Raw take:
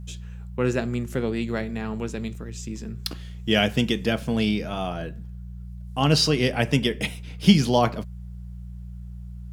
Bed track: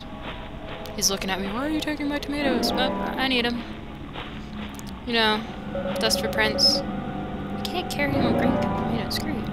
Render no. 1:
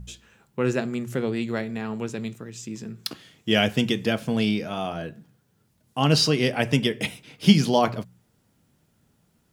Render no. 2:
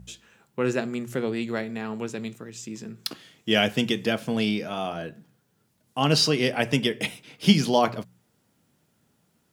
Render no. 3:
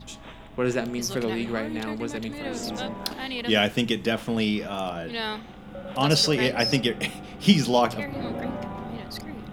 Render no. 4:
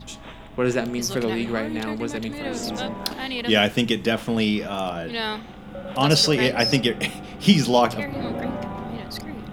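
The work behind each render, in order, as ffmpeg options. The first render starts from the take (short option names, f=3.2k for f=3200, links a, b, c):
-af "bandreject=f=60:t=h:w=4,bandreject=f=120:t=h:w=4,bandreject=f=180:t=h:w=4"
-af "highpass=f=170:p=1"
-filter_complex "[1:a]volume=-9.5dB[a];[0:a][a]amix=inputs=2:normalize=0"
-af "volume=3dB,alimiter=limit=-3dB:level=0:latency=1"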